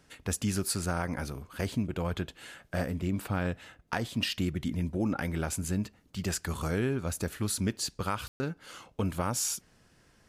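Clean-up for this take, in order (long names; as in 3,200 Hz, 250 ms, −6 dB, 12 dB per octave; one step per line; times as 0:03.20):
ambience match 0:08.28–0:08.40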